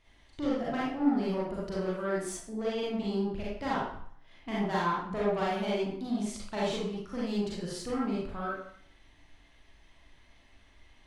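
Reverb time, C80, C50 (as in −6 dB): 0.60 s, 4.0 dB, −2.0 dB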